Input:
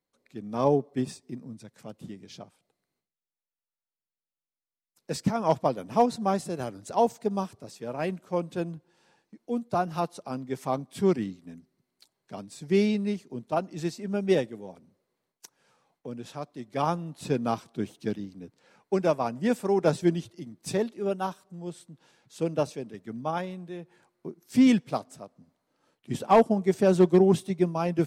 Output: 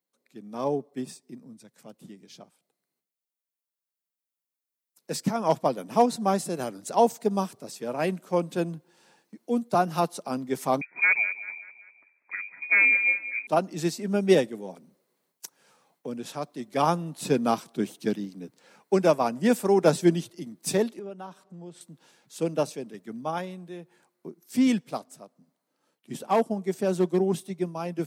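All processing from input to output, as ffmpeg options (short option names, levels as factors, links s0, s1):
-filter_complex "[0:a]asettb=1/sr,asplit=3[s0][s1][s2];[s0]atrim=end=10.814[s3];[s1]atrim=start=10.81:end=13.47,asetpts=PTS-STARTPTS,afade=t=in:d=0.004:c=qsin,afade=t=out:st=2.656:d=0.004:c=qsin,aeval=exprs='0.119*(abs(mod(val(0)/0.119+3,4)-2)-1)':c=same,aecho=1:1:194|388|582|776:0.168|0.0823|0.0403|0.0198,atrim=end_sample=117306,lowpass=f=2200:t=q:w=0.5098,lowpass=f=2200:t=q:w=0.6013,lowpass=f=2200:t=q:w=0.9,lowpass=f=2200:t=q:w=2.563,afreqshift=-2600[s4];[s2]atrim=start=13.466[s5];[s3][s4]acrossfade=d=0.004:c1=hsin:c2=qsin[s6];[s6][s5]acrossfade=d=0.004:c1=qsin:c2=hsin,asettb=1/sr,asplit=3[s7][s8][s9];[s7]atrim=end=20.994[s10];[s8]atrim=start=20.99:end=21.81,asetpts=PTS-STARTPTS,afade=t=in:d=0.004:c=qsin,afade=t=out:st=0.816:d=0.004:c=qsin,aemphasis=mode=reproduction:type=50fm,acompressor=threshold=0.00794:ratio=3:attack=3.2:release=140:knee=1:detection=peak[s11];[s9]atrim=start=21.806[s12];[s10][s11]acrossfade=d=0.004:c1=hsin:c2=qsin[s13];[s13][s12]acrossfade=d=0.004:c1=qsin:c2=hsin,highshelf=f=8500:g=10.5,dynaudnorm=f=360:g=31:m=3.76,highpass=f=150:w=0.5412,highpass=f=150:w=1.3066,volume=0.596"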